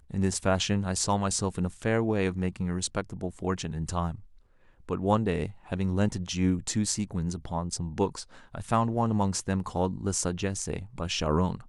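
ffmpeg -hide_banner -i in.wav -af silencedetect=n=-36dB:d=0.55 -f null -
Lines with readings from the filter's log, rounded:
silence_start: 4.15
silence_end: 4.89 | silence_duration: 0.73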